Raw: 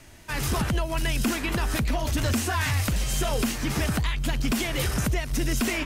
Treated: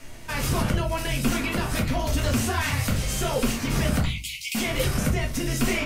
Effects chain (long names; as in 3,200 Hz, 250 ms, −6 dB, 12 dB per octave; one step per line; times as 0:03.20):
0:04.05–0:04.55: Chebyshev high-pass filter 2,100 Hz, order 8
in parallel at +1 dB: downward compressor, threshold −33 dBFS, peak gain reduction 11.5 dB
on the sum: rectangular room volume 130 cubic metres, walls furnished, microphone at 1.7 metres
level −5 dB